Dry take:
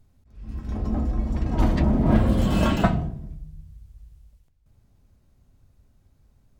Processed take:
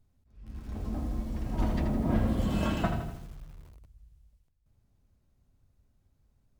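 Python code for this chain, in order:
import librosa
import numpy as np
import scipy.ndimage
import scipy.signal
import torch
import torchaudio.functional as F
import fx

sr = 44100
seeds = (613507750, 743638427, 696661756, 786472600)

y = fx.echo_crushed(x, sr, ms=81, feedback_pct=55, bits=7, wet_db=-7.0)
y = F.gain(torch.from_numpy(y), -9.0).numpy()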